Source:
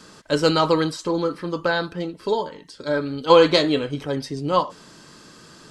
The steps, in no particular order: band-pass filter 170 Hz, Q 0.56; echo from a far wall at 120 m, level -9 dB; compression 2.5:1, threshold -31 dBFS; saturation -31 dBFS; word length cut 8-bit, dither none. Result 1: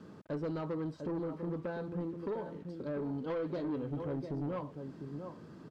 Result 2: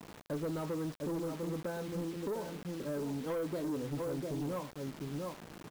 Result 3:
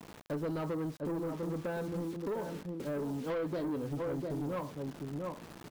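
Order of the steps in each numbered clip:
compression > echo from a far wall > word length cut > band-pass filter > saturation; echo from a far wall > compression > band-pass filter > word length cut > saturation; band-pass filter > word length cut > echo from a far wall > compression > saturation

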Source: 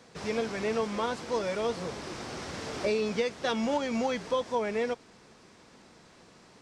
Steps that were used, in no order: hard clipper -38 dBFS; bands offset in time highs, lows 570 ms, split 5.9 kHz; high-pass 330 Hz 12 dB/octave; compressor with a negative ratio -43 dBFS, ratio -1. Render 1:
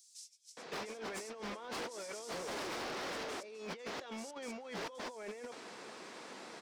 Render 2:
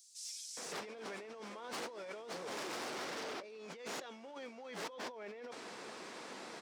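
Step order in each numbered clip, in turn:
high-pass > compressor with a negative ratio > bands offset in time > hard clipper; bands offset in time > compressor with a negative ratio > hard clipper > high-pass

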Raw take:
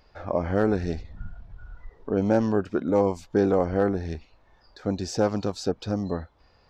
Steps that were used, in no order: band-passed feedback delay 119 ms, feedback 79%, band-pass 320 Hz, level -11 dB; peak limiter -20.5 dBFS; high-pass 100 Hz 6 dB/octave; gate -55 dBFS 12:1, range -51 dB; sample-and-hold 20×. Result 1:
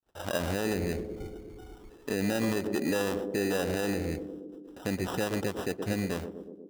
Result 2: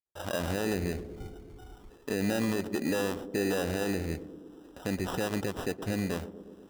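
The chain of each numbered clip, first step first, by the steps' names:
gate > sample-and-hold > band-passed feedback delay > peak limiter > high-pass; peak limiter > high-pass > sample-and-hold > band-passed feedback delay > gate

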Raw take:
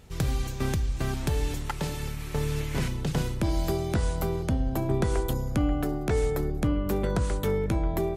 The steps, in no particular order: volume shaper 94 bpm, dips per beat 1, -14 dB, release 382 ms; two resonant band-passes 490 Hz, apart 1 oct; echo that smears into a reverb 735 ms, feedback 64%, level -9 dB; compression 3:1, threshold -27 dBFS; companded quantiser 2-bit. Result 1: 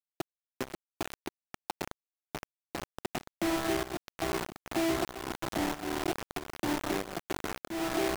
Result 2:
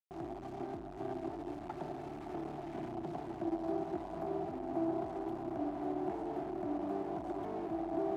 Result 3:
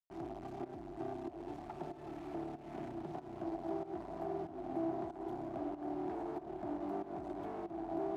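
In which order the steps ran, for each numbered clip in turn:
echo that smears into a reverb > compression > two resonant band-passes > companded quantiser > volume shaper; volume shaper > compression > echo that smears into a reverb > companded quantiser > two resonant band-passes; companded quantiser > echo that smears into a reverb > volume shaper > compression > two resonant band-passes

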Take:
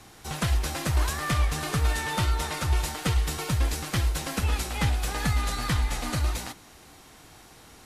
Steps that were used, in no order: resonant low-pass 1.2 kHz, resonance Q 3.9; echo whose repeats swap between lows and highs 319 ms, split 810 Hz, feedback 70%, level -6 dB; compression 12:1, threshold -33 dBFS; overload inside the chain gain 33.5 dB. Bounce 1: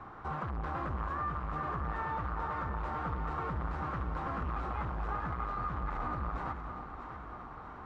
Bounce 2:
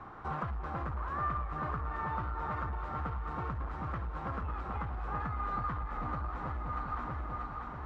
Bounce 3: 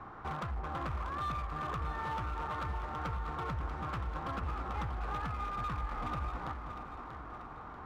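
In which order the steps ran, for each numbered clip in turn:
overload inside the chain > resonant low-pass > compression > echo whose repeats swap between lows and highs; echo whose repeats swap between lows and highs > compression > overload inside the chain > resonant low-pass; resonant low-pass > compression > overload inside the chain > echo whose repeats swap between lows and highs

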